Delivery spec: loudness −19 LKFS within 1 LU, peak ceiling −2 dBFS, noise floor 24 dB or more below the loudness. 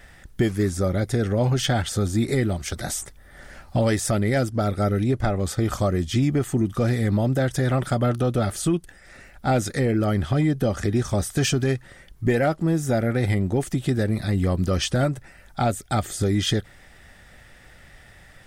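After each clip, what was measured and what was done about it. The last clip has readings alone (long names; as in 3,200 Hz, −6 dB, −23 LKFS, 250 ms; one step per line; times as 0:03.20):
integrated loudness −23.5 LKFS; sample peak −9.0 dBFS; target loudness −19.0 LKFS
→ level +4.5 dB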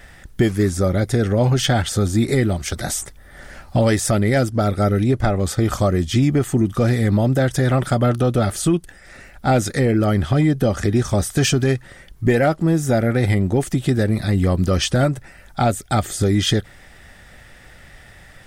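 integrated loudness −19.0 LKFS; sample peak −4.5 dBFS; background noise floor −45 dBFS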